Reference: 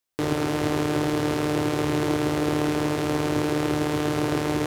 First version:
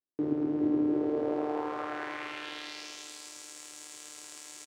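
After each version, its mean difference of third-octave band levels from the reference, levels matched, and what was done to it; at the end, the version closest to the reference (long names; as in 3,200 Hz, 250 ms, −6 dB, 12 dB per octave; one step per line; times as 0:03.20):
13.5 dB: band-pass filter sweep 290 Hz → 7,700 Hz, 0:00.83–0:03.13
on a send: single-tap delay 417 ms −6 dB
on the sum: level −1.5 dB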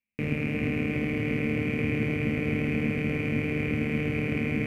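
10.0 dB: drawn EQ curve 160 Hz 0 dB, 220 Hz +14 dB, 330 Hz −15 dB, 470 Hz −6 dB, 900 Hz −21 dB, 1,600 Hz −12 dB, 2,400 Hz +9 dB, 3,500 Hz −21 dB, 6,300 Hz −23 dB, 15,000 Hz −18 dB
delay that swaps between a low-pass and a high-pass 357 ms, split 1,700 Hz, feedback 70%, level −5 dB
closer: second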